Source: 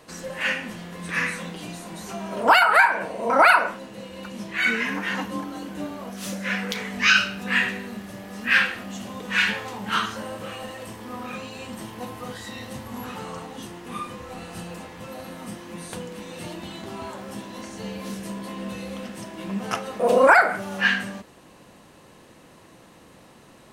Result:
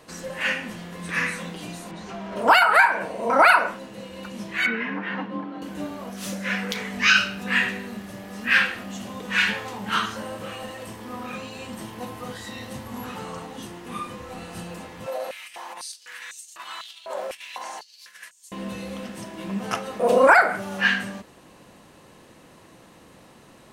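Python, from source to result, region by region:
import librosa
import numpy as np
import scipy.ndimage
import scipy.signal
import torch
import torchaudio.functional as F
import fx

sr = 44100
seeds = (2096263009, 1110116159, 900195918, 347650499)

y = fx.chain(x, sr, fx.lowpass(hz=4100.0, slope=12),
    fx.clip_hard(threshold_db=-31.0), at=(1.91, 2.36))
y = fx.chain(y, sr, fx.highpass(hz=140.0, slope=24),
    fx.air_absorb(metres=370.0), at=(4.66, 5.62))
y = fx.chain(y, sr, fx.over_compress(threshold_db=-37.0, ratio=-0.5),
    fx.filter_held_highpass(hz=4.0, low_hz=580.0, high_hz=6900.0), at=(15.06, 18.52))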